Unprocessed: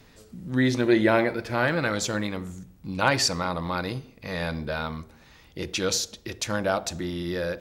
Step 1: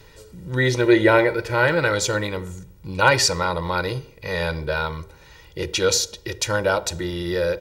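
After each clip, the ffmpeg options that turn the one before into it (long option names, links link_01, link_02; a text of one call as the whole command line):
ffmpeg -i in.wav -af "aecho=1:1:2.1:0.76,volume=3.5dB" out.wav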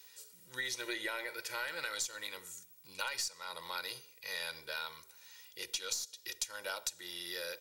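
ffmpeg -i in.wav -af "aderivative,aeval=exprs='0.398*(cos(1*acos(clip(val(0)/0.398,-1,1)))-cos(1*PI/2))+0.0126*(cos(4*acos(clip(val(0)/0.398,-1,1)))-cos(4*PI/2))+0.02*(cos(6*acos(clip(val(0)/0.398,-1,1)))-cos(6*PI/2))':channel_layout=same,acompressor=threshold=-34dB:ratio=20" out.wav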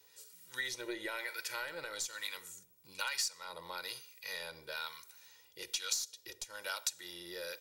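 ffmpeg -i in.wav -filter_complex "[0:a]acrossover=split=910[link_01][link_02];[link_01]aeval=exprs='val(0)*(1-0.7/2+0.7/2*cos(2*PI*1.1*n/s))':channel_layout=same[link_03];[link_02]aeval=exprs='val(0)*(1-0.7/2-0.7/2*cos(2*PI*1.1*n/s))':channel_layout=same[link_04];[link_03][link_04]amix=inputs=2:normalize=0,volume=2.5dB" out.wav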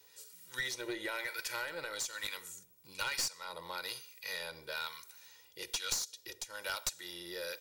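ffmpeg -i in.wav -af "aeval=exprs='clip(val(0),-1,0.0168)':channel_layout=same,volume=2dB" out.wav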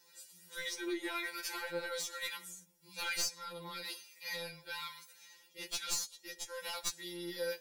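ffmpeg -i in.wav -af "afftfilt=real='re*2.83*eq(mod(b,8),0)':imag='im*2.83*eq(mod(b,8),0)':win_size=2048:overlap=0.75,volume=1.5dB" out.wav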